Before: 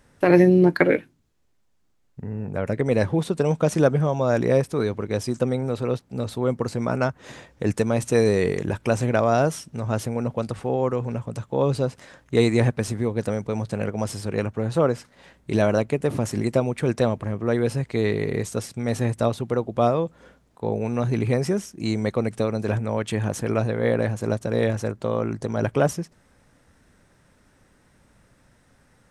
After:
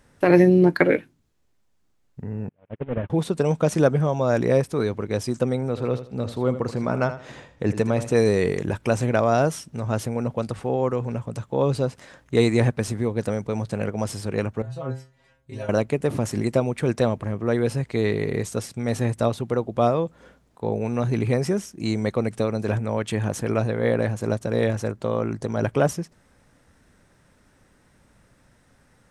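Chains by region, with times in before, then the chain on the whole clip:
2.49–3.10 s: one-bit delta coder 16 kbps, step -36.5 dBFS + gate -23 dBFS, range -42 dB
5.68–8.17 s: treble shelf 6.8 kHz -10 dB + feedback delay 80 ms, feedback 27%, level -12 dB
14.62–15.69 s: peaking EQ 70 Hz +12.5 dB 1.5 oct + inharmonic resonator 130 Hz, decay 0.37 s, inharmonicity 0.002
whole clip: none

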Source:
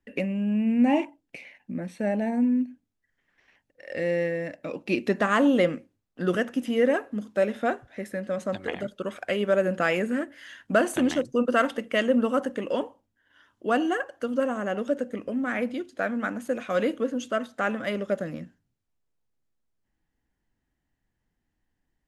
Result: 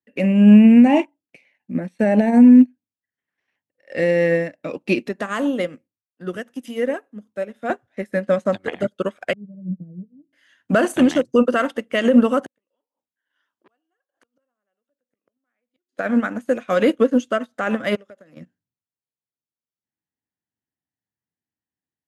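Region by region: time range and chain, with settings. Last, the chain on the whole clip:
5.08–7.70 s: treble shelf 7.8 kHz +8 dB + compression 3:1, threshold -31 dBFS + three bands expanded up and down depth 100%
9.33–10.33 s: four-pole ladder low-pass 220 Hz, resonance 35% + comb 6.5 ms, depth 80%
12.46–15.97 s: high-pass 540 Hz 6 dB/octave + inverted gate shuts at -28 dBFS, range -35 dB + transformer saturation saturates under 2.4 kHz
17.95–18.37 s: expander -39 dBFS + bass shelf 250 Hz -11 dB + compression, threshold -37 dBFS
whole clip: high-pass 90 Hz 24 dB/octave; loudness maximiser +20 dB; upward expansion 2.5:1, over -25 dBFS; trim -2 dB

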